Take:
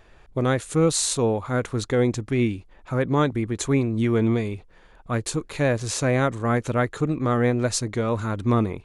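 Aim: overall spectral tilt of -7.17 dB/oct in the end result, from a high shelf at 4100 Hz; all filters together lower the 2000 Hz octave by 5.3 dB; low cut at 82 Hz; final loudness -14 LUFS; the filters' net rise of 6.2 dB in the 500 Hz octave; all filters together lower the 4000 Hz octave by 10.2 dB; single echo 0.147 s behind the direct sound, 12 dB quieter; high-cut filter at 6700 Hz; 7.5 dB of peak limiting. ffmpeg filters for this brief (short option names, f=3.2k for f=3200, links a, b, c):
-af "highpass=82,lowpass=6.7k,equalizer=f=500:t=o:g=7.5,equalizer=f=2k:t=o:g=-5,equalizer=f=4k:t=o:g=-6.5,highshelf=f=4.1k:g=-6.5,alimiter=limit=-12.5dB:level=0:latency=1,aecho=1:1:147:0.251,volume=9.5dB"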